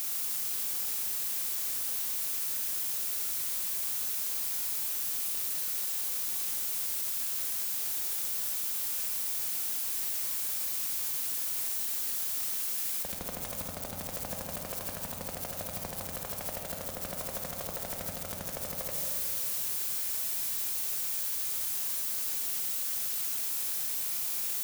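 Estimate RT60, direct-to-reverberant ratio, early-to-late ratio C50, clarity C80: 2.7 s, 1.0 dB, 2.0 dB, 3.0 dB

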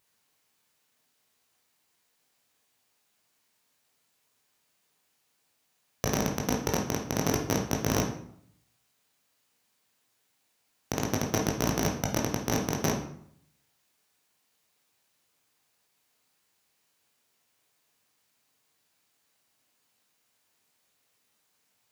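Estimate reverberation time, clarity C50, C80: 0.65 s, 6.0 dB, 10.5 dB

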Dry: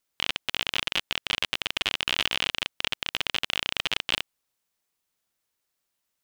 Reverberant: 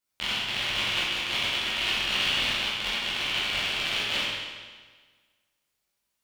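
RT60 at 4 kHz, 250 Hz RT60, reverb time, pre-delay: 1.4 s, 1.5 s, 1.5 s, 10 ms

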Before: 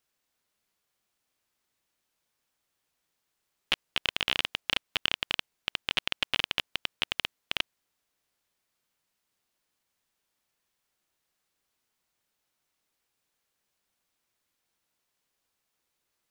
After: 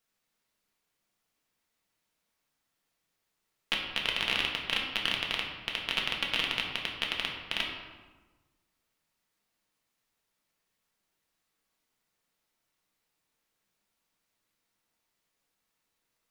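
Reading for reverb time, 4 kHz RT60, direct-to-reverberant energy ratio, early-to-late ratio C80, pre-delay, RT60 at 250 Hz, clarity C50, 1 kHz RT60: 1.3 s, 0.80 s, -1.5 dB, 5.5 dB, 4 ms, 1.5 s, 4.0 dB, 1.3 s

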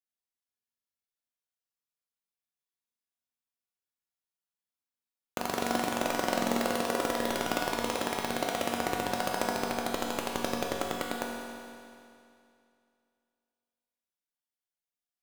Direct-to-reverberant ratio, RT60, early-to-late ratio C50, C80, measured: -2.0 dB, 2.5 s, 0.5 dB, 1.5 dB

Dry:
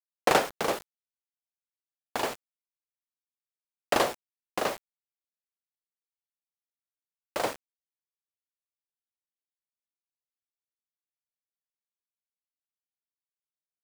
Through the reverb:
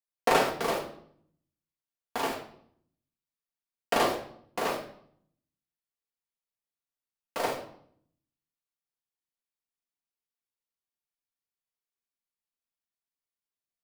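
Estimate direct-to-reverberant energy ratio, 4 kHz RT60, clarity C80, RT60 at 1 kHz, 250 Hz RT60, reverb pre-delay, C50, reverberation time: -2.5 dB, 0.50 s, 11.5 dB, 0.60 s, 0.90 s, 4 ms, 6.5 dB, 0.65 s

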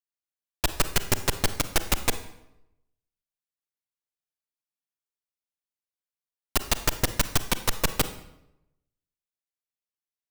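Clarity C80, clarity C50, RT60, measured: 14.5 dB, 12.0 dB, 0.85 s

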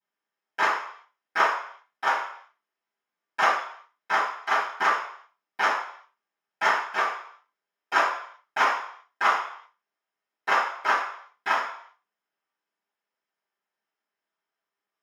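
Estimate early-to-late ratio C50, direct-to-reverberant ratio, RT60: 4.5 dB, -21.5 dB, 0.60 s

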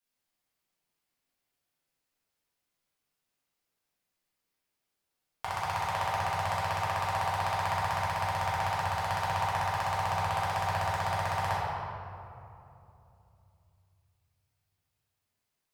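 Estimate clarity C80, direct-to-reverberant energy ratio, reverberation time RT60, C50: -1.0 dB, -9.5 dB, 2.9 s, -3.0 dB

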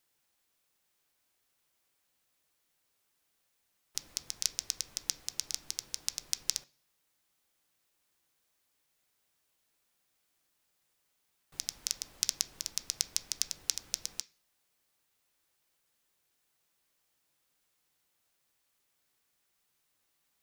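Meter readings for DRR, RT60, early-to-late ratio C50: 11.0 dB, 0.40 s, 21.0 dB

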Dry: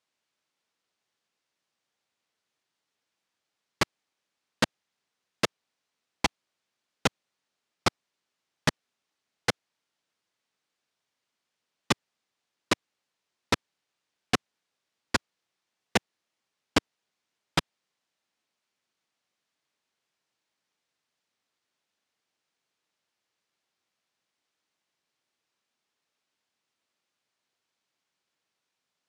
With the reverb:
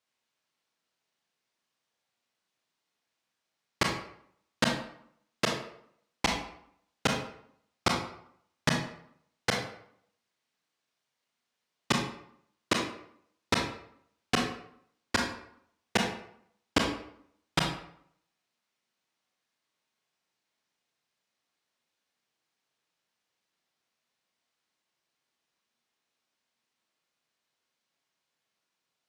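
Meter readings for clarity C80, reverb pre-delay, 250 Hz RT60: 8.0 dB, 27 ms, 0.70 s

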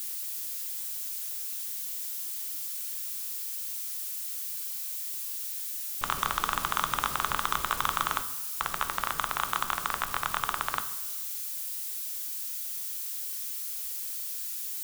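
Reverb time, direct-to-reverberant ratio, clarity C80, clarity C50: 1.0 s, 9.0 dB, 14.5 dB, 12.5 dB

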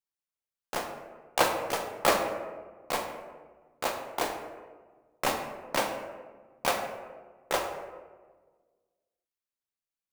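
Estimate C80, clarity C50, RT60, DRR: 7.5 dB, 5.5 dB, 1.5 s, 2.5 dB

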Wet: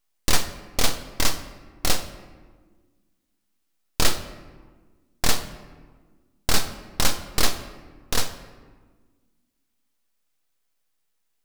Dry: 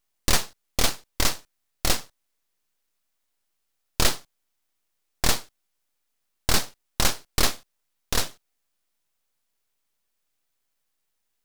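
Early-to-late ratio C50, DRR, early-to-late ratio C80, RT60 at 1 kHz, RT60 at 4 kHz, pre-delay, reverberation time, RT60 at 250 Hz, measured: 11.0 dB, 8.5 dB, 12.5 dB, 1.4 s, 0.85 s, 4 ms, 1.5 s, 2.1 s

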